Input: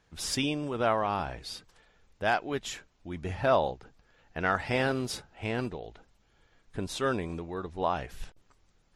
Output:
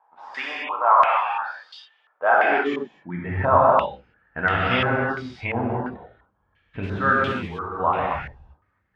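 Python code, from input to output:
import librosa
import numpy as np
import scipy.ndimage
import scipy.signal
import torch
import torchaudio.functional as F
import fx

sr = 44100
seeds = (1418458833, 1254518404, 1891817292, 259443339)

y = fx.dereverb_blind(x, sr, rt60_s=1.8)
y = fx.low_shelf(y, sr, hz=220.0, db=-10.5, at=(0.64, 1.27))
y = fx.rev_gated(y, sr, seeds[0], gate_ms=310, shape='flat', drr_db=-5.5)
y = fx.filter_sweep_highpass(y, sr, from_hz=860.0, to_hz=76.0, start_s=1.98, end_s=3.58, q=1.9)
y = fx.air_absorb(y, sr, metres=55.0)
y = fx.mod_noise(y, sr, seeds[1], snr_db=17, at=(6.82, 7.79), fade=0.02)
y = fx.filter_held_lowpass(y, sr, hz=2.9, low_hz=900.0, high_hz=3100.0)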